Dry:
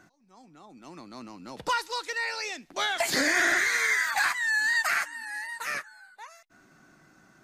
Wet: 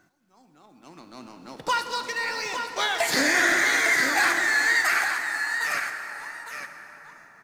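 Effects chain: G.711 law mismatch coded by A; on a send: echo 0.858 s -7 dB; on the sum: plate-style reverb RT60 4.8 s, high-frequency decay 0.5×, DRR 5.5 dB; gain +3 dB

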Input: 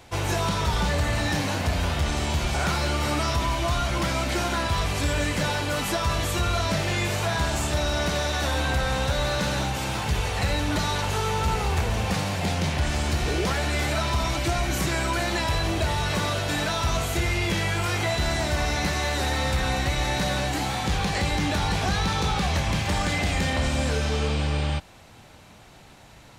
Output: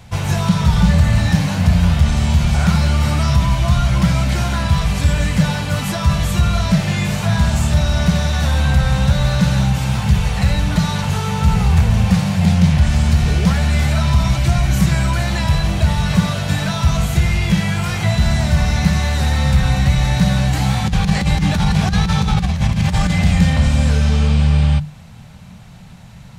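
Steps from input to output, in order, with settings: resonant low shelf 240 Hz +9 dB, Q 3; notches 50/100/150/200 Hz; 20.53–23.1 negative-ratio compressor -17 dBFS, ratio -0.5; gain +3 dB

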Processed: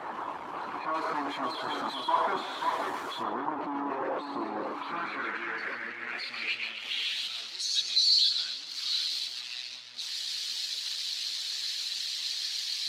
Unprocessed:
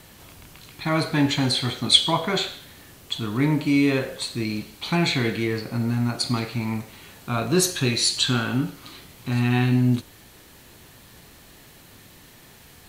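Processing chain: infinite clipping; split-band echo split 2100 Hz, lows 0.54 s, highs 0.139 s, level -4.5 dB; band-pass sweep 1000 Hz -> 4400 Hz, 4.64–7.59; dynamic EQ 310 Hz, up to +8 dB, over -56 dBFS, Q 1.5; harmonic-percussive split percussive +6 dB; 0.94–3.23 high shelf 3800 Hz +11 dB; spectral expander 1.5:1

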